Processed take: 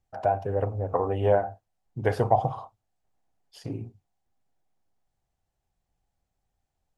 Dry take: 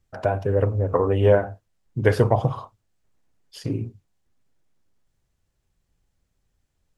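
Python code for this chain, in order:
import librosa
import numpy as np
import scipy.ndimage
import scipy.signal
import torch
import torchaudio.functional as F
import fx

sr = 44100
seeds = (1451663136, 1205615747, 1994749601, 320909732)

y = fx.peak_eq(x, sr, hz=760.0, db=13.5, octaves=0.47)
y = y * 10.0 ** (-8.0 / 20.0)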